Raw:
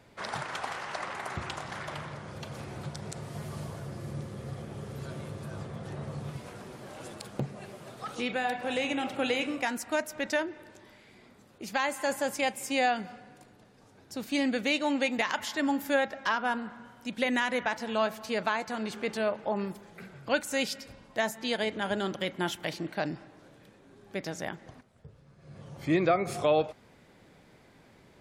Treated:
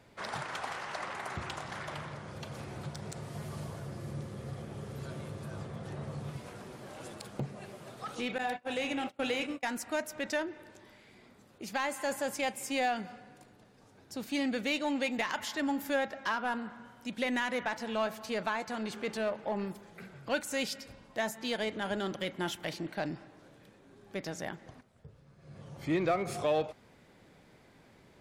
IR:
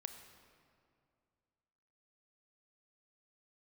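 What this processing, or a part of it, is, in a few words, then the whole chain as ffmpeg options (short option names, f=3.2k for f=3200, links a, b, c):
parallel distortion: -filter_complex "[0:a]asettb=1/sr,asplit=3[a][b][c];[a]atrim=end=8.384[d];[b]atrim=start=8.38:end=9.67,asetpts=PTS-STARTPTS,afade=t=in:d=0.004:c=qsin,afade=t=out:st=1.286:d=0.004:c=qsin,agate=range=-27dB:threshold=-32dB:ratio=16:detection=peak[e];[c]atrim=start=9.666[f];[d][e]acrossfade=d=0.004:c1=hsin:c2=qsin[g];[g][f]acrossfade=d=0.004:c1=qsin:c2=hsin,asplit=2[h][i];[i]asoftclip=type=hard:threshold=-31.5dB,volume=-4.5dB[j];[h][j]amix=inputs=2:normalize=0,volume=-6dB"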